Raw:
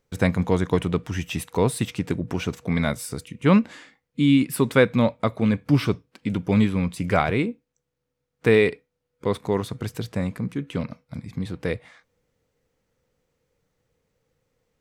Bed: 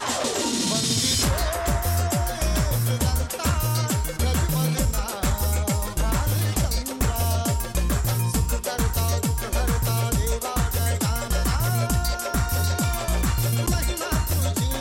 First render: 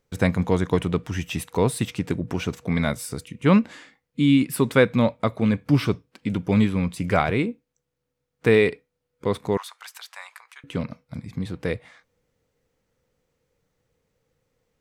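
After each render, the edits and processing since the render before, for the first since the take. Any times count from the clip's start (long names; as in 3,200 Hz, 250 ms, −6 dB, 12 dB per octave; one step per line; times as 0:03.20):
0:09.57–0:10.64: Butterworth high-pass 850 Hz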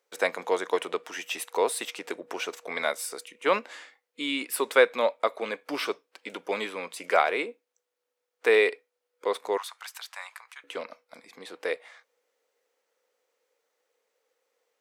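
high-pass filter 440 Hz 24 dB per octave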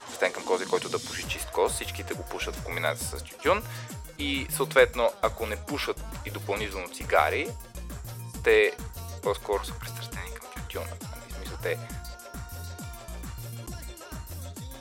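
mix in bed −16 dB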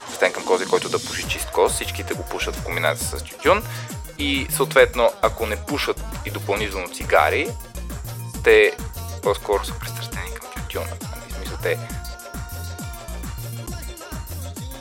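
level +7.5 dB
brickwall limiter −2 dBFS, peak gain reduction 3 dB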